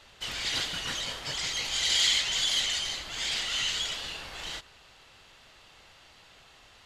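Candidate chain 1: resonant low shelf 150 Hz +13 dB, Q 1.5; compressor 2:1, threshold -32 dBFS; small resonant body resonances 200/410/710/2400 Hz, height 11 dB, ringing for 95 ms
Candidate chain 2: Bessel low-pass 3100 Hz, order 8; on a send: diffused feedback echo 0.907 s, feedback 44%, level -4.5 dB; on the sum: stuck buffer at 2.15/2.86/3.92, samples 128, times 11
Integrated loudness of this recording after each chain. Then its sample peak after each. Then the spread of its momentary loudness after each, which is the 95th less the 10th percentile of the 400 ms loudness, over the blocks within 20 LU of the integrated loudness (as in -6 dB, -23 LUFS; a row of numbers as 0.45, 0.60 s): -31.5, -31.5 LUFS; -19.0, -16.5 dBFS; 23, 18 LU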